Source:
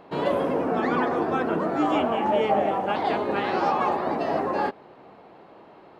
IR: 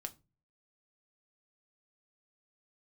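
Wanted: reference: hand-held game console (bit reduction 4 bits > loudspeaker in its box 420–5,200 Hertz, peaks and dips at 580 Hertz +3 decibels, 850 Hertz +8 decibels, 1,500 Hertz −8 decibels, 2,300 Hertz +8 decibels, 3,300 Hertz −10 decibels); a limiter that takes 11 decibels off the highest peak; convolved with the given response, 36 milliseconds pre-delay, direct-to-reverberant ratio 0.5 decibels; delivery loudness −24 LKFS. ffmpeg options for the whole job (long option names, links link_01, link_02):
-filter_complex "[0:a]alimiter=limit=-21.5dB:level=0:latency=1,asplit=2[link_01][link_02];[1:a]atrim=start_sample=2205,adelay=36[link_03];[link_02][link_03]afir=irnorm=-1:irlink=0,volume=2.5dB[link_04];[link_01][link_04]amix=inputs=2:normalize=0,acrusher=bits=3:mix=0:aa=0.000001,highpass=420,equalizer=frequency=580:width_type=q:width=4:gain=3,equalizer=frequency=850:width_type=q:width=4:gain=8,equalizer=frequency=1500:width_type=q:width=4:gain=-8,equalizer=frequency=2300:width_type=q:width=4:gain=8,equalizer=frequency=3300:width_type=q:width=4:gain=-10,lowpass=frequency=5200:width=0.5412,lowpass=frequency=5200:width=1.3066,volume=-0.5dB"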